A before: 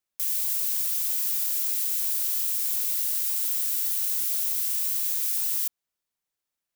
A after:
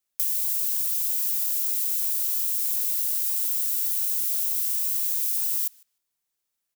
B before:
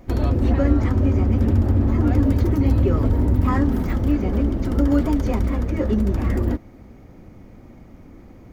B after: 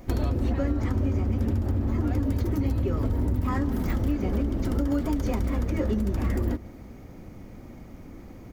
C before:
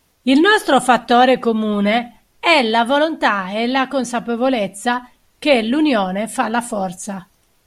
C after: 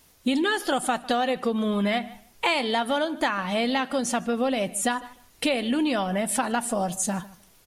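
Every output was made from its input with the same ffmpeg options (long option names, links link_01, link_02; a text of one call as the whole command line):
ffmpeg -i in.wav -filter_complex "[0:a]highshelf=frequency=4400:gain=6.5,acompressor=threshold=-22dB:ratio=6,asplit=2[link_01][link_02];[link_02]adelay=152,lowpass=frequency=4200:poles=1,volume=-19.5dB,asplit=2[link_03][link_04];[link_04]adelay=152,lowpass=frequency=4200:poles=1,volume=0.18[link_05];[link_03][link_05]amix=inputs=2:normalize=0[link_06];[link_01][link_06]amix=inputs=2:normalize=0" out.wav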